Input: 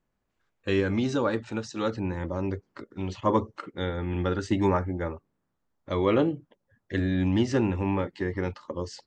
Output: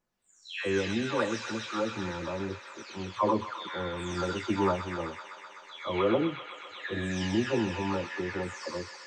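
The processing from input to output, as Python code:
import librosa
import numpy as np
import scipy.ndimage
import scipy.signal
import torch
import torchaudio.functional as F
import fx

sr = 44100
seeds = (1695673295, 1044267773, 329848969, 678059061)

y = fx.spec_delay(x, sr, highs='early', ms=443)
y = fx.low_shelf(y, sr, hz=190.0, db=-9.0)
y = fx.echo_wet_highpass(y, sr, ms=127, feedback_pct=83, hz=1700.0, wet_db=-3.0)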